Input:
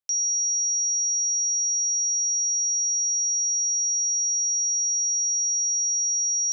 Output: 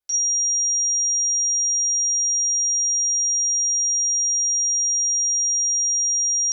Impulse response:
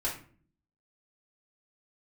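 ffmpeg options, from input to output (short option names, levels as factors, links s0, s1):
-filter_complex "[1:a]atrim=start_sample=2205,afade=t=out:st=0.36:d=0.01,atrim=end_sample=16317,asetrate=42336,aresample=44100[s0];[0:a][s0]afir=irnorm=-1:irlink=0"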